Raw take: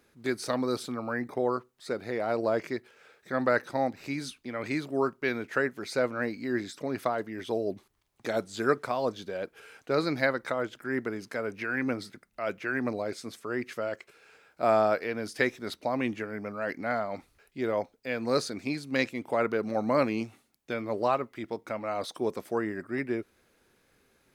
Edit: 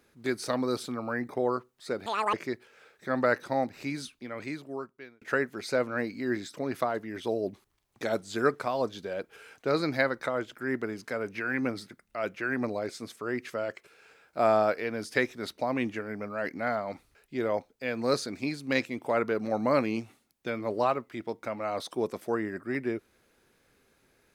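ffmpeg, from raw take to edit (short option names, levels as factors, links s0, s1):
-filter_complex "[0:a]asplit=4[s0][s1][s2][s3];[s0]atrim=end=2.064[s4];[s1]atrim=start=2.06:end=2.57,asetpts=PTS-STARTPTS,asetrate=82026,aresample=44100[s5];[s2]atrim=start=2.566:end=5.45,asetpts=PTS-STARTPTS,afade=t=out:st=1.534:d=1.35[s6];[s3]atrim=start=5.45,asetpts=PTS-STARTPTS,afade=t=in:d=0.004:c=hsin[s7];[s4][s5]acrossfade=d=0.004:c1=hsin:c2=hsin[s8];[s6][s7]concat=n=2:v=0:a=1[s9];[s8][s9]acrossfade=d=0.004:c1=hsin:c2=hsin"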